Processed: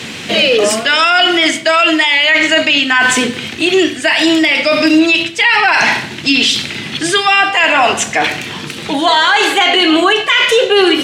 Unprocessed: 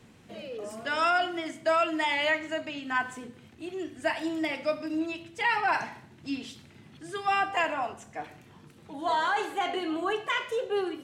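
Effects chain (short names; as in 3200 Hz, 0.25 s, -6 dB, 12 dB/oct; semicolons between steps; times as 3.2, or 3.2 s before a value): weighting filter D; reverse; compressor 5:1, threshold -31 dBFS, peak gain reduction 14 dB; reverse; maximiser +28.5 dB; gain -1 dB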